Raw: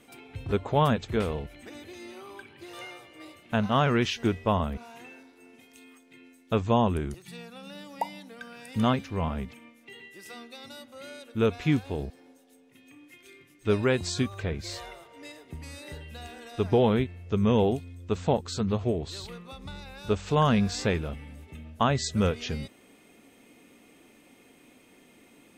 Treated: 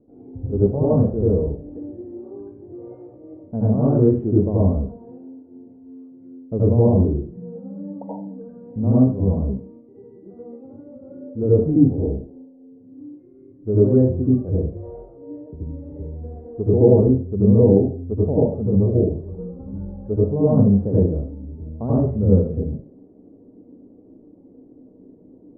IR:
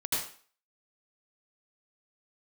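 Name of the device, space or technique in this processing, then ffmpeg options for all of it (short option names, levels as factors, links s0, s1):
next room: -filter_complex "[0:a]lowpass=f=520:w=0.5412,lowpass=f=520:w=1.3066[s0];[1:a]atrim=start_sample=2205[s1];[s0][s1]afir=irnorm=-1:irlink=0,volume=1.58"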